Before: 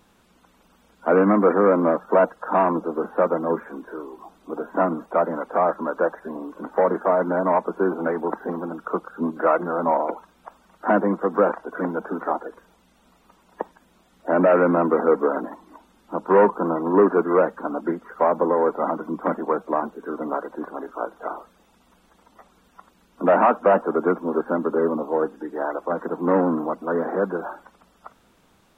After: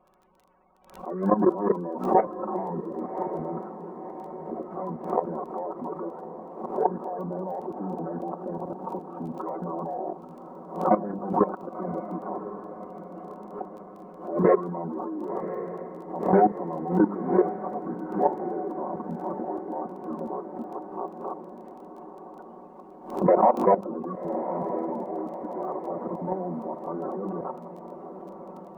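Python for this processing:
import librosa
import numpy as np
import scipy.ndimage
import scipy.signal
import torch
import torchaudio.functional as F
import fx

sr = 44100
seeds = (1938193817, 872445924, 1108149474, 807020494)

y = fx.spec_quant(x, sr, step_db=30)
y = scipy.signal.sosfilt(scipy.signal.butter(2, 1700.0, 'lowpass', fs=sr, output='sos'), y)
y = fx.low_shelf(y, sr, hz=390.0, db=-7.5)
y = fx.hum_notches(y, sr, base_hz=50, count=10)
y = y + 1.0 * np.pad(y, (int(5.4 * sr / 1000.0), 0))[:len(y)]
y = fx.level_steps(y, sr, step_db=16)
y = fx.dmg_crackle(y, sr, seeds[0], per_s=13.0, level_db=-44.0)
y = fx.formant_shift(y, sr, semitones=-4)
y = fx.echo_diffused(y, sr, ms=1094, feedback_pct=59, wet_db=-10.5)
y = fx.pre_swell(y, sr, db_per_s=110.0)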